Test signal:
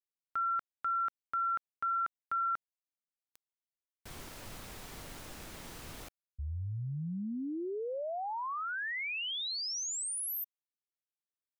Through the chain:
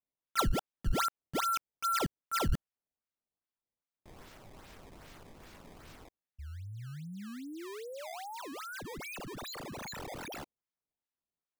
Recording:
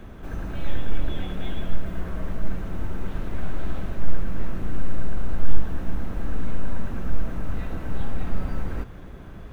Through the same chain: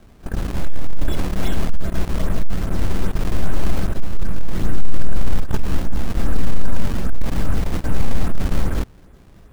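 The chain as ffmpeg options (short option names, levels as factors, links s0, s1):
-af "acrusher=samples=18:mix=1:aa=0.000001:lfo=1:lforange=28.8:lforate=2.5,agate=range=0.178:threshold=0.02:ratio=16:release=23:detection=peak,aeval=exprs='0.794*(cos(1*acos(clip(val(0)/0.794,-1,1)))-cos(1*PI/2))+0.0891*(cos(2*acos(clip(val(0)/0.794,-1,1)))-cos(2*PI/2))+0.158*(cos(4*acos(clip(val(0)/0.794,-1,1)))-cos(4*PI/2))+0.282*(cos(5*acos(clip(val(0)/0.794,-1,1)))-cos(5*PI/2))':c=same"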